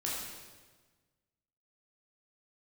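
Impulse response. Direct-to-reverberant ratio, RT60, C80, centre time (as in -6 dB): -6.0 dB, 1.4 s, 2.0 dB, 85 ms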